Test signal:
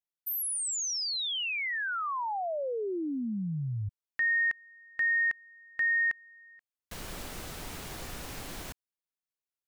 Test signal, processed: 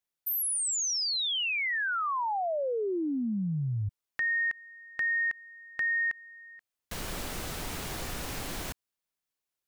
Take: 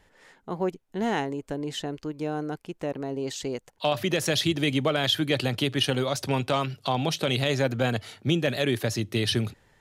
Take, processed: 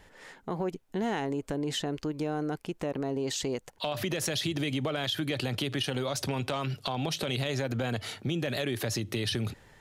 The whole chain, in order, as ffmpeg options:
-af "acompressor=threshold=-32dB:ratio=6:attack=2.7:release=74:knee=6:detection=rms,volume=5dB"

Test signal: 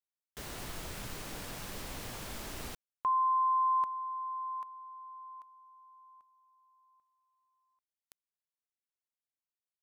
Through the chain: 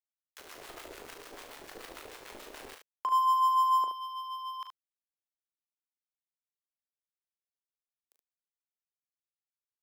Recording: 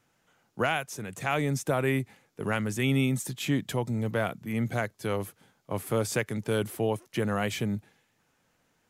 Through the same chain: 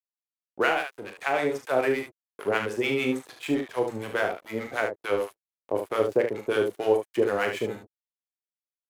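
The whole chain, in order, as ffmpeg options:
-filter_complex "[0:a]acrossover=split=3100[a][b];[b]acompressor=threshold=-52dB:ratio=4:attack=1:release=60[c];[a][c]amix=inputs=2:normalize=0,aeval=exprs='sgn(val(0))*max(abs(val(0))-0.0075,0)':c=same,acompressor=mode=upward:threshold=-39dB:ratio=1.5:attack=1.1:release=454:knee=2.83:detection=peak,acrossover=split=820[d][e];[d]aeval=exprs='val(0)*(1-1/2+1/2*cos(2*PI*6.8*n/s))':c=same[f];[e]aeval=exprs='val(0)*(1-1/2-1/2*cos(2*PI*6.8*n/s))':c=same[g];[f][g]amix=inputs=2:normalize=0,lowshelf=f=260:t=q:w=1.5:g=-13,asplit=2[h][i];[i]aecho=0:1:27|39|73:0.237|0.422|0.447[j];[h][j]amix=inputs=2:normalize=0,volume=8dB"

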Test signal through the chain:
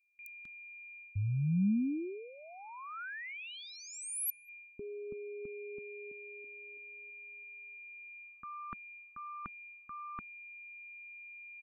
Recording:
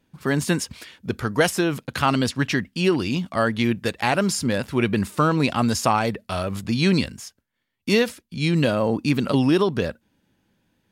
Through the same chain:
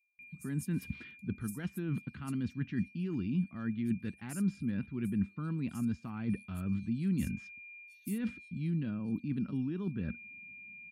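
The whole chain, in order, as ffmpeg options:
-filter_complex "[0:a]aeval=exprs='val(0)+0.0158*sin(2*PI*2400*n/s)':c=same,areverse,acompressor=threshold=-31dB:ratio=20,areverse,afftdn=nr=17:nf=-57,firequalizer=gain_entry='entry(130,0);entry(200,5);entry(540,-21);entry(1400,-10);entry(5200,-19);entry(11000,-3)':delay=0.05:min_phase=1,acrossover=split=5000[a][b];[a]adelay=190[c];[c][b]amix=inputs=2:normalize=0,volume=1dB"

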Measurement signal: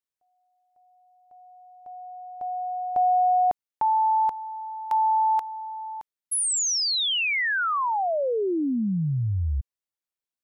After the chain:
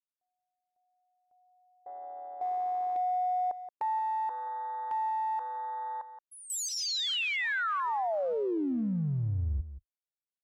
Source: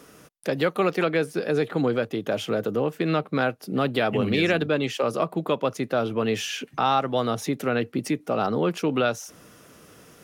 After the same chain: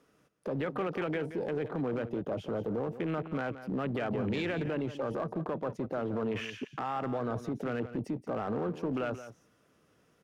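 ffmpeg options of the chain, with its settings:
-filter_complex "[0:a]lowpass=f=3.9k:p=1,afwtdn=0.0251,acompressor=threshold=-29dB:ratio=5:attack=0.15:release=33:knee=1:detection=peak,asplit=2[a][b];[b]aecho=0:1:175:0.237[c];[a][c]amix=inputs=2:normalize=0"

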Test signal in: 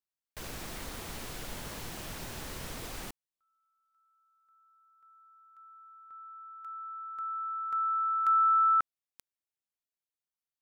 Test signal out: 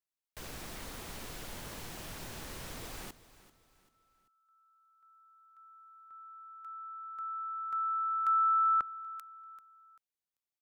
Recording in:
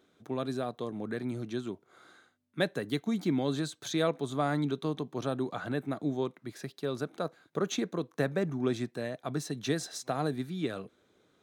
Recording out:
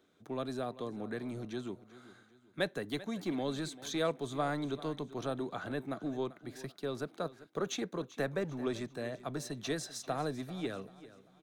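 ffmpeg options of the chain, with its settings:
-filter_complex "[0:a]acrossover=split=290|5100[a][b][c];[a]asoftclip=type=hard:threshold=-38.5dB[d];[d][b][c]amix=inputs=3:normalize=0,aecho=1:1:390|780|1170:0.141|0.0551|0.0215,volume=-3dB"

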